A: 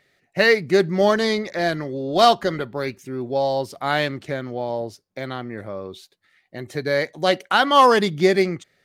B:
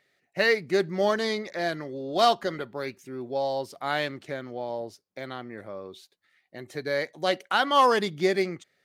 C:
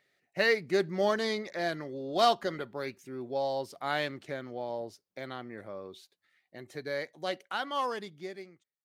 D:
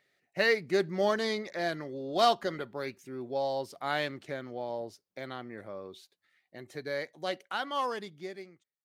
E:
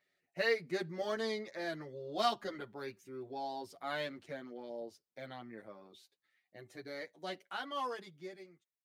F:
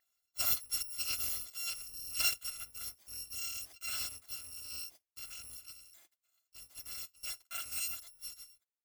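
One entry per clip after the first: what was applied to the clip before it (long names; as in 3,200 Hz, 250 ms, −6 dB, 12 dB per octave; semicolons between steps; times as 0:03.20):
low-shelf EQ 120 Hz −11 dB; level −6 dB
fade-out on the ending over 2.80 s; level −3.5 dB
no processing that can be heard
barber-pole flanger 8.2 ms −0.26 Hz; level −4 dB
samples in bit-reversed order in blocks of 256 samples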